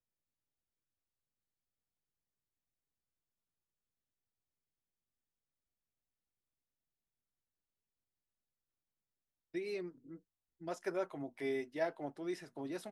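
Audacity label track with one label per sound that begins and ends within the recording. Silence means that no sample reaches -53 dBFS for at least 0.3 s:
9.540000	10.170000	sound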